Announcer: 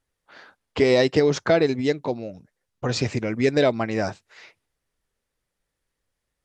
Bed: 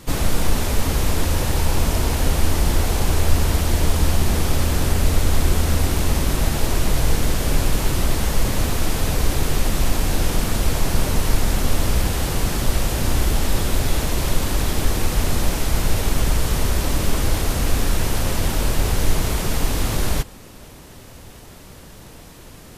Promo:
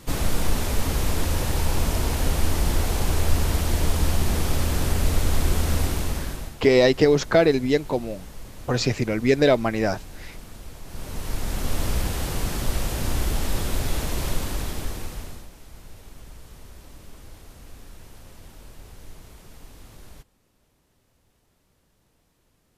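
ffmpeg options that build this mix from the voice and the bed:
-filter_complex "[0:a]adelay=5850,volume=1.19[s0];[1:a]volume=3.76,afade=t=out:st=5.81:d=0.75:silence=0.141254,afade=t=in:st=10.85:d=0.98:silence=0.16788,afade=t=out:st=14.27:d=1.21:silence=0.105925[s1];[s0][s1]amix=inputs=2:normalize=0"

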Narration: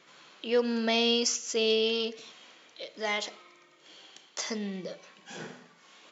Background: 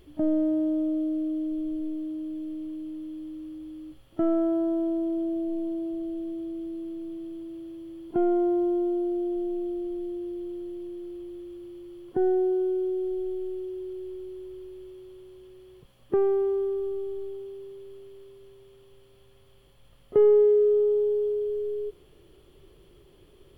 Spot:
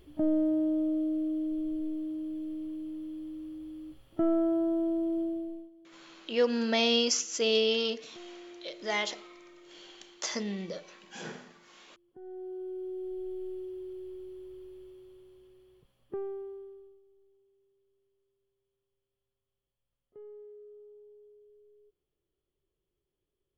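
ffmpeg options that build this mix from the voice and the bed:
-filter_complex "[0:a]adelay=5850,volume=1[s0];[1:a]volume=7.08,afade=t=out:st=5.2:d=0.5:silence=0.0749894,afade=t=in:st=12.21:d=1.28:silence=0.105925,afade=t=out:st=14.72:d=2.29:silence=0.0562341[s1];[s0][s1]amix=inputs=2:normalize=0"

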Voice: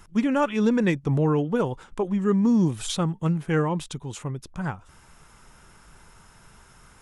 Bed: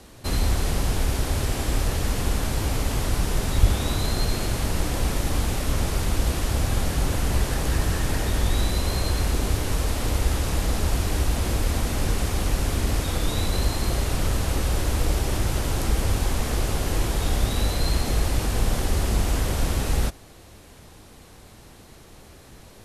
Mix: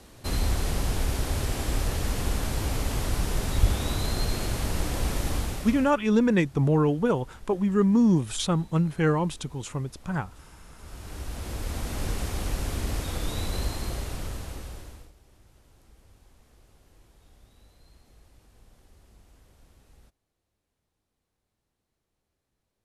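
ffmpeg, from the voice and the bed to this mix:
-filter_complex "[0:a]adelay=5500,volume=1[s0];[1:a]volume=7.94,afade=t=out:st=5.3:d=0.66:silence=0.0630957,afade=t=in:st=10.76:d=1.29:silence=0.0841395,afade=t=out:st=13.61:d=1.51:silence=0.0398107[s1];[s0][s1]amix=inputs=2:normalize=0"

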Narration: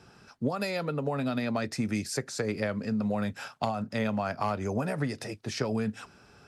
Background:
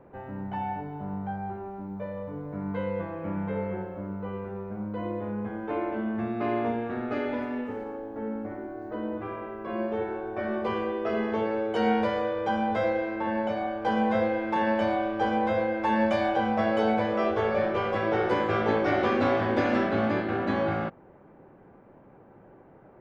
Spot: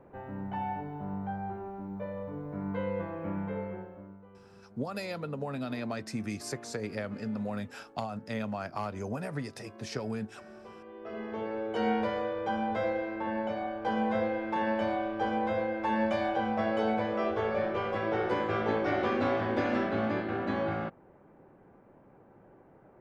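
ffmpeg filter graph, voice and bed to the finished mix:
-filter_complex "[0:a]adelay=4350,volume=0.531[s0];[1:a]volume=4.47,afade=t=out:st=3.27:d=0.99:silence=0.133352,afade=t=in:st=10.85:d=0.95:silence=0.16788[s1];[s0][s1]amix=inputs=2:normalize=0"

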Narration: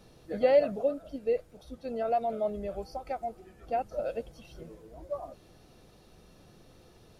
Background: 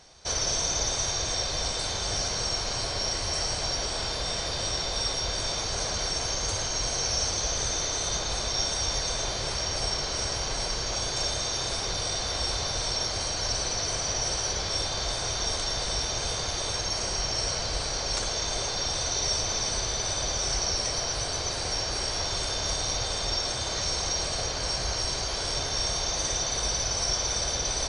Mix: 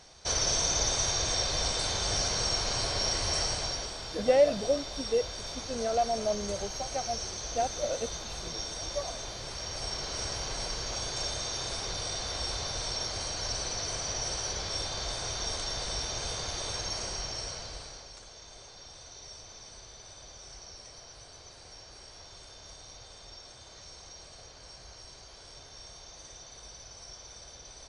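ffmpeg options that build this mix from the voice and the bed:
-filter_complex "[0:a]adelay=3850,volume=1.06[s0];[1:a]volume=1.58,afade=t=out:st=3.37:d=0.6:silence=0.354813,afade=t=in:st=9.47:d=0.75:silence=0.595662,afade=t=out:st=16.9:d=1.23:silence=0.177828[s1];[s0][s1]amix=inputs=2:normalize=0"

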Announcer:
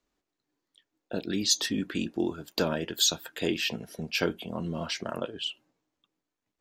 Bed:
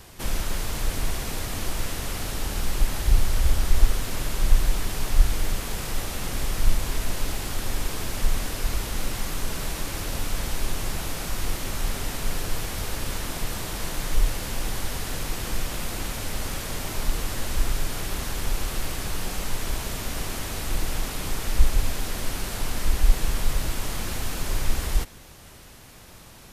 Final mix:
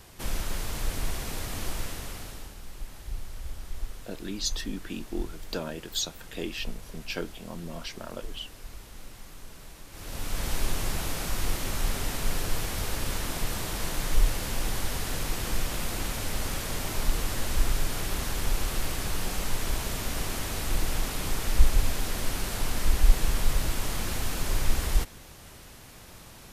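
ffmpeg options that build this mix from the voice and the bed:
-filter_complex "[0:a]adelay=2950,volume=0.501[s0];[1:a]volume=3.98,afade=t=out:st=1.7:d=0.86:silence=0.223872,afade=t=in:st=9.9:d=0.63:silence=0.158489[s1];[s0][s1]amix=inputs=2:normalize=0"

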